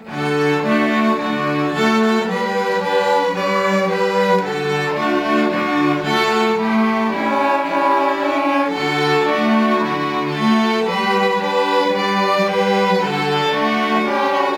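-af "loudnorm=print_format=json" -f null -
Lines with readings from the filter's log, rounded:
"input_i" : "-16.9",
"input_tp" : "-4.5",
"input_lra" : "0.8",
"input_thresh" : "-26.9",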